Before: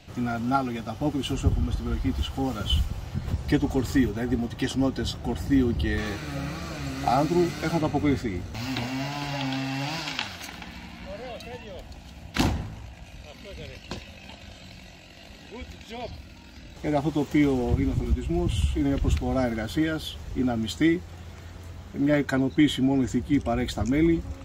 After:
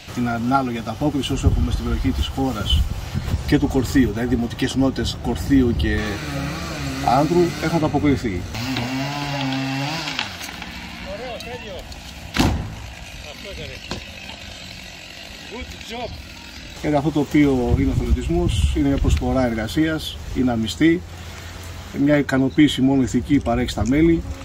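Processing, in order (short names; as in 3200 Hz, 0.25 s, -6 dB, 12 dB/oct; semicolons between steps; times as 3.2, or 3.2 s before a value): mismatched tape noise reduction encoder only; gain +6 dB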